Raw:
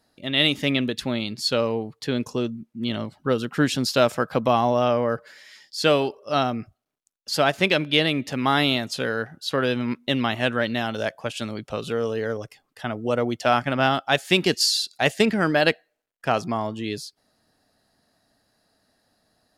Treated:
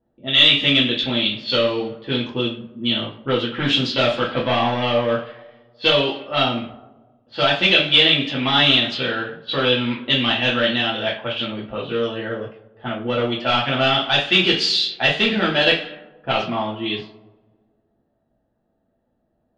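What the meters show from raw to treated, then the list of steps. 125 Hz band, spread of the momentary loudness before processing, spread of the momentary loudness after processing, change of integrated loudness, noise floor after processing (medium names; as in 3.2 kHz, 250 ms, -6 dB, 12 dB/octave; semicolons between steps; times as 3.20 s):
+1.5 dB, 11 LU, 13 LU, +5.0 dB, -70 dBFS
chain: overload inside the chain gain 15 dB; resonant low-pass 3.3 kHz, resonance Q 4.4; two-slope reverb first 0.37 s, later 1.7 s, from -19 dB, DRR -5 dB; level-controlled noise filter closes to 580 Hz, open at -10.5 dBFS; trim -4 dB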